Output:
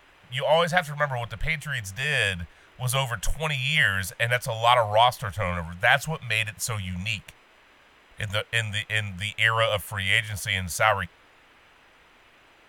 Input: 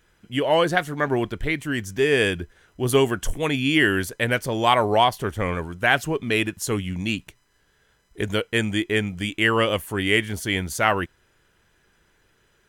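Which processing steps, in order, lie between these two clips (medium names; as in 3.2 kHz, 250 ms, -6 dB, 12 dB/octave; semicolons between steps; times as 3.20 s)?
elliptic band-stop 170–540 Hz, stop band 40 dB; band noise 230–2900 Hz -57 dBFS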